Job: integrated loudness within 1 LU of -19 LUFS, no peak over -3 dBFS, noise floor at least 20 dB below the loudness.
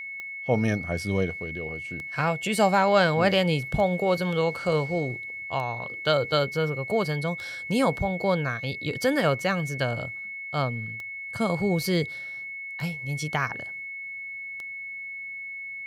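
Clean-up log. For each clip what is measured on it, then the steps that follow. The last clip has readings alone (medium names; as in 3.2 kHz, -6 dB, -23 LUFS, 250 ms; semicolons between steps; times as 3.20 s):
clicks found 9; steady tone 2.2 kHz; tone level -34 dBFS; loudness -27.0 LUFS; peak level -8.5 dBFS; loudness target -19.0 LUFS
-> de-click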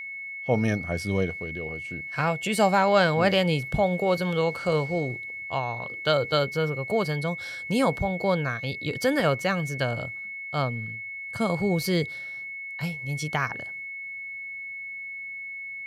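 clicks found 0; steady tone 2.2 kHz; tone level -34 dBFS
-> band-stop 2.2 kHz, Q 30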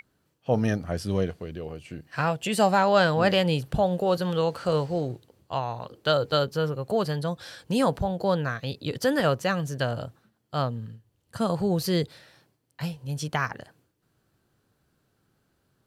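steady tone not found; loudness -26.5 LUFS; peak level -8.5 dBFS; loudness target -19.0 LUFS
-> trim +7.5 dB; peak limiter -3 dBFS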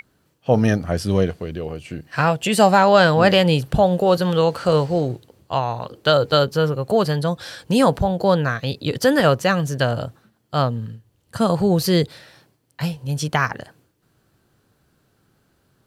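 loudness -19.0 LUFS; peak level -3.0 dBFS; noise floor -65 dBFS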